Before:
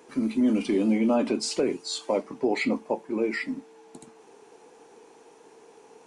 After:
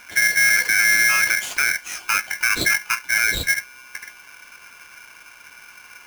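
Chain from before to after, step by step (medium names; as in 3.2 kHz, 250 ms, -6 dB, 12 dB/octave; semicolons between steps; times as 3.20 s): tone controls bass +12 dB, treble -9 dB; peak limiter -17.5 dBFS, peak gain reduction 9.5 dB; polarity switched at an audio rate 1.9 kHz; trim +6.5 dB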